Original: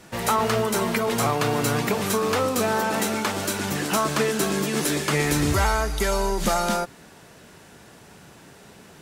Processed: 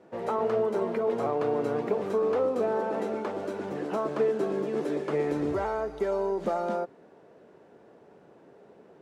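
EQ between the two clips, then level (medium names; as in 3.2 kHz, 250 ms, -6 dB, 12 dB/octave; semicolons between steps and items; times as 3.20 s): band-pass filter 460 Hz, Q 1.6; 0.0 dB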